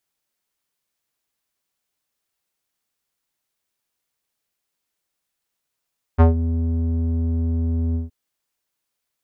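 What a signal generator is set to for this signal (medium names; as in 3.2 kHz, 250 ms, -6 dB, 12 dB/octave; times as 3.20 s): synth note square E2 12 dB/octave, low-pass 260 Hz, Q 1.3, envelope 2.5 oct, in 0.18 s, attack 27 ms, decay 0.13 s, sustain -12 dB, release 0.15 s, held 1.77 s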